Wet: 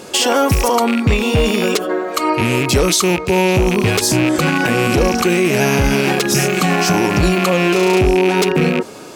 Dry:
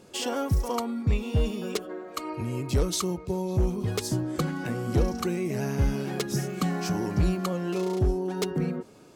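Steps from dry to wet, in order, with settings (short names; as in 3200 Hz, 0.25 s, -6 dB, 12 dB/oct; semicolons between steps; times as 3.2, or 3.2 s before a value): rattling part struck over -34 dBFS, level -30 dBFS; low shelf 250 Hz -12 dB; maximiser +25.5 dB; gain -4 dB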